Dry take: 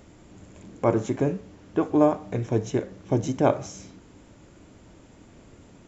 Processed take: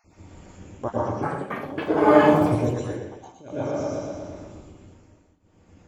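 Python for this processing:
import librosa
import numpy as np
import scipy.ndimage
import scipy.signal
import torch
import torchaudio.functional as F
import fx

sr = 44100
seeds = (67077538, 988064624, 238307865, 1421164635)

y = fx.spec_dropout(x, sr, seeds[0], share_pct=39)
y = fx.peak_eq(y, sr, hz=81.0, db=5.0, octaves=0.55)
y = fx.echo_feedback(y, sr, ms=120, feedback_pct=54, wet_db=-7.0)
y = fx.rev_plate(y, sr, seeds[1], rt60_s=1.2, hf_ratio=0.55, predelay_ms=95, drr_db=-7.5)
y = fx.tremolo_shape(y, sr, shape='triangle', hz=0.51, depth_pct=95)
y = fx.echo_pitch(y, sr, ms=276, semitones=6, count=3, db_per_echo=-3.0, at=(0.95, 3.41))
y = y * 10.0 ** (-2.0 / 20.0)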